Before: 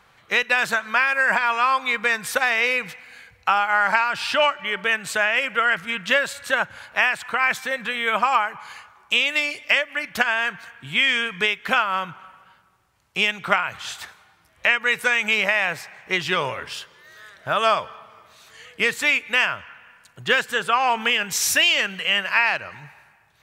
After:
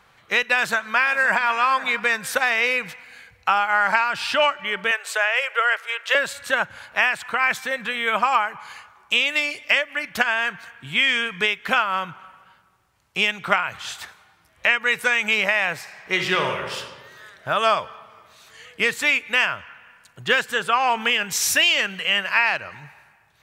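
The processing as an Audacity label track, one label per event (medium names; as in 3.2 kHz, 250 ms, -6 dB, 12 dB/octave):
0.530000	1.470000	echo throw 520 ms, feedback 35%, level -15 dB
4.910000	6.150000	elliptic high-pass 450 Hz, stop band 60 dB
15.810000	16.780000	reverb throw, RT60 1.4 s, DRR 3.5 dB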